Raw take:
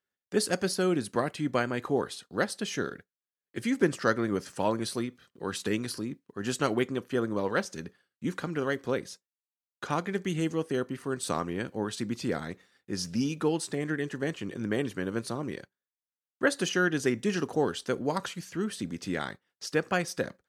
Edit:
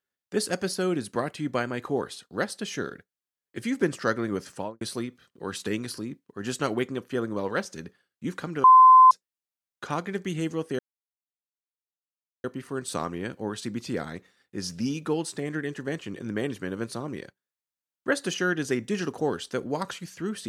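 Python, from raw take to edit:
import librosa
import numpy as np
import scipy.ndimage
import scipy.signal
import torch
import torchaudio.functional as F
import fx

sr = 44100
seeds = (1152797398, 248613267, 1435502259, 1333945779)

y = fx.studio_fade_out(x, sr, start_s=4.51, length_s=0.3)
y = fx.edit(y, sr, fx.bleep(start_s=8.64, length_s=0.47, hz=1030.0, db=-9.5),
    fx.insert_silence(at_s=10.79, length_s=1.65), tone=tone)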